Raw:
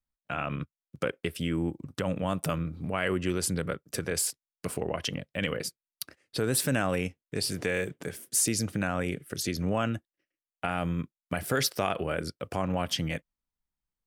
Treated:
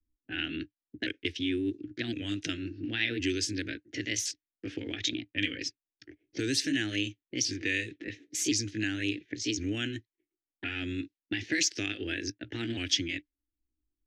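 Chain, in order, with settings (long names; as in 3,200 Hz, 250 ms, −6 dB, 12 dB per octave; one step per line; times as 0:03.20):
pitch shifter swept by a sawtooth +4 semitones, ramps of 1,064 ms
low-pass that shuts in the quiet parts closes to 420 Hz, open at −27 dBFS
drawn EQ curve 110 Hz 0 dB, 180 Hz −17 dB, 300 Hz +11 dB, 570 Hz −17 dB, 1,100 Hz −24 dB, 1,700 Hz +4 dB, 2,600 Hz +7 dB, 6,400 Hz +10 dB, 10,000 Hz −14 dB, 16,000 Hz −24 dB
multiband upward and downward compressor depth 40%
level −2 dB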